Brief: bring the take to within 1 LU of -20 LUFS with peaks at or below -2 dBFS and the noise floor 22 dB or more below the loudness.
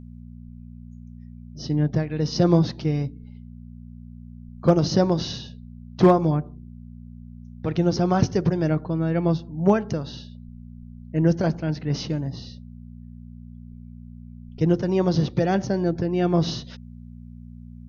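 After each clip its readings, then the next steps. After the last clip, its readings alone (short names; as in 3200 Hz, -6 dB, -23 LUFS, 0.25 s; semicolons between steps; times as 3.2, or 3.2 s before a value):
hum 60 Hz; harmonics up to 240 Hz; hum level -39 dBFS; loudness -23.0 LUFS; peak -7.0 dBFS; loudness target -20.0 LUFS
-> de-hum 60 Hz, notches 4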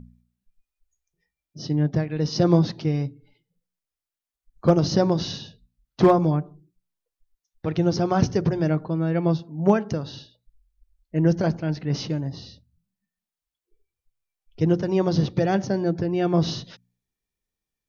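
hum none; loudness -23.0 LUFS; peak -6.0 dBFS; loudness target -20.0 LUFS
-> gain +3 dB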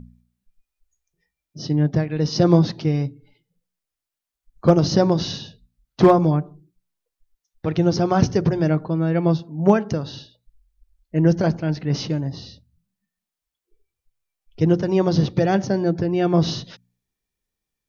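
loudness -20.0 LUFS; peak -3.0 dBFS; noise floor -86 dBFS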